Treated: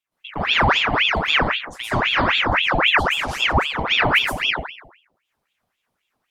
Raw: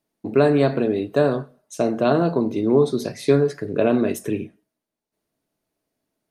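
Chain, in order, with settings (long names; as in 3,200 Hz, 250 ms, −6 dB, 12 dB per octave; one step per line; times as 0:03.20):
downward compressor, threshold −19 dBFS, peak gain reduction 8.5 dB
convolution reverb RT60 0.65 s, pre-delay 112 ms, DRR −11.5 dB
ring modulator whose carrier an LFO sweeps 1,700 Hz, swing 80%, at 3.8 Hz
level −5.5 dB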